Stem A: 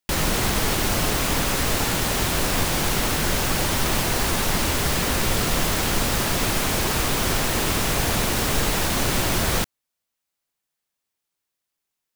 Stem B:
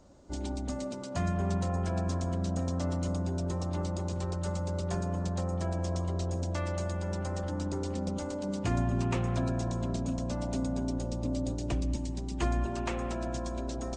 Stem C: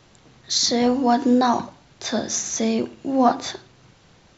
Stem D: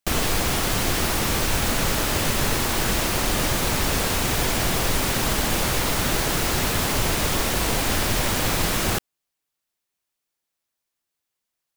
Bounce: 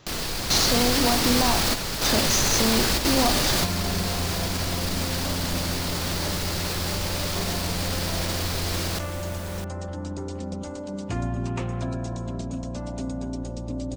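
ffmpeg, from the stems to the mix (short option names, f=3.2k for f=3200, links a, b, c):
-filter_complex "[0:a]volume=-16dB[a];[1:a]adelay=2450,volume=1dB[b];[2:a]acompressor=threshold=-23dB:ratio=6,volume=1.5dB,asplit=2[c][d];[3:a]equalizer=f=4.6k:t=o:w=0.66:g=8.5,alimiter=limit=-16.5dB:level=0:latency=1:release=20,volume=3dB[e];[d]apad=whole_len=518713[f];[e][f]sidechaingate=range=-7dB:threshold=-40dB:ratio=16:detection=peak[g];[a][b][c][g]amix=inputs=4:normalize=0"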